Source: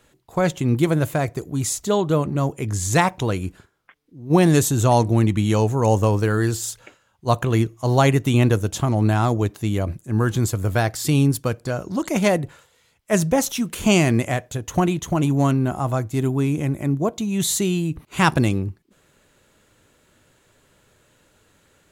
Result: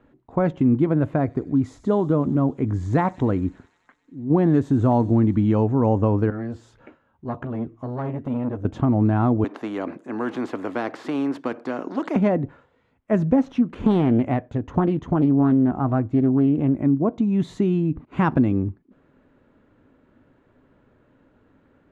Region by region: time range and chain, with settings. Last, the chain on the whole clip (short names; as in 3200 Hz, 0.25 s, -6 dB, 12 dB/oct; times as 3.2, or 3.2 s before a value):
1.16–5.45 bell 2600 Hz -5.5 dB 0.22 oct + thin delay 94 ms, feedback 78%, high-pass 4800 Hz, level -10 dB
6.3–8.65 compressor 1.5:1, threshold -35 dBFS + doubler 13 ms -9 dB + core saturation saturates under 870 Hz
9.44–12.16 HPF 330 Hz 24 dB/oct + low shelf 470 Hz +6.5 dB + spectral compressor 2:1
13.4–16.78 median filter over 3 samples + Doppler distortion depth 0.36 ms
whole clip: LPF 1400 Hz 12 dB/oct; bell 260 Hz +11 dB 0.48 oct; compressor 2.5:1, threshold -16 dBFS